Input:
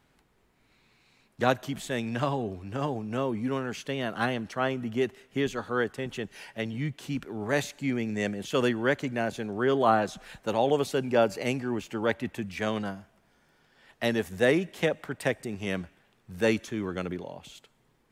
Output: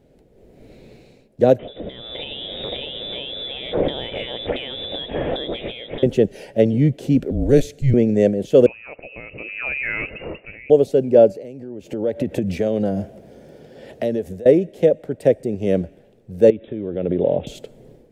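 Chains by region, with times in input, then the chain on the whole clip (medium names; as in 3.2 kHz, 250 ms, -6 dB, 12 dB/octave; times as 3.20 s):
1.59–6.03 s: zero-crossing glitches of -22.5 dBFS + frequency inversion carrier 3.7 kHz + compression 12:1, threshold -37 dBFS
7.30–7.94 s: peaking EQ 1.1 kHz -10.5 dB 1.5 oct + frequency shift -140 Hz
8.66–10.70 s: compression 2:1, threshold -39 dBFS + transient shaper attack -2 dB, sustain +2 dB + frequency inversion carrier 2.8 kHz
11.31–14.46 s: high-pass 58 Hz + compression 16:1, threshold -40 dBFS
16.50–17.47 s: block-companded coder 5-bit + brick-wall FIR low-pass 3.9 kHz + compression 4:1, threshold -35 dBFS
whole clip: resonant low shelf 770 Hz +12 dB, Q 3; level rider gain up to 11.5 dB; trim -1 dB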